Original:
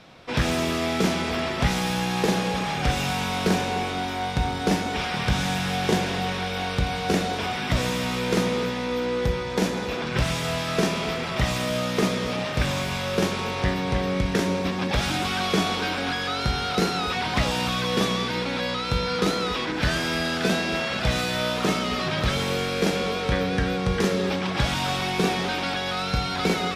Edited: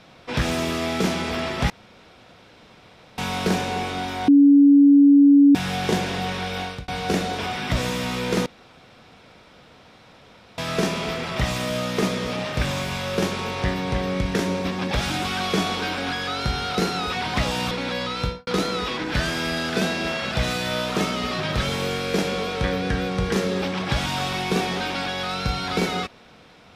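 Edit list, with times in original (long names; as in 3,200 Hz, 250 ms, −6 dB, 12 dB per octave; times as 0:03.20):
0:01.70–0:03.18: fill with room tone
0:04.28–0:05.55: beep over 283 Hz −9 dBFS
0:06.60–0:06.88: fade out
0:08.46–0:10.58: fill with room tone
0:17.71–0:18.39: remove
0:18.89–0:19.15: fade out and dull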